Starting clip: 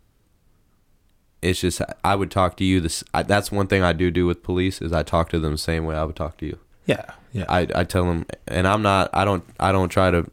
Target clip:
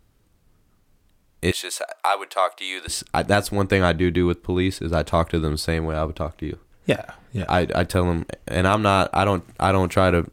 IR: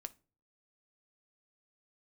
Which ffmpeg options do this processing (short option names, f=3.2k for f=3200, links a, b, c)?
-filter_complex "[0:a]asettb=1/sr,asplit=3[a][b][c];[a]atrim=end=1.514[d];[b]atrim=start=1.51:end=2.88,asetpts=PTS-STARTPTS,afade=t=in:d=0.004:c=qsin,afade=t=out:st=1.366:d=0.004:c=qsin,highpass=f=560:w=0.5412,highpass=f=560:w=1.3066[e];[c]atrim=start=2.876[f];[d][e]acrossfade=d=0.004:c1=hsin:c2=qsin[g];[g][f]acrossfade=d=0.004:c1=qsin:c2=hsin"